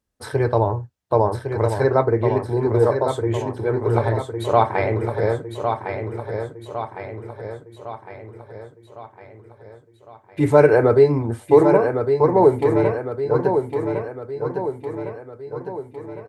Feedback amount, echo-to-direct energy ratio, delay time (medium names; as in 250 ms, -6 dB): 53%, -5.0 dB, 1107 ms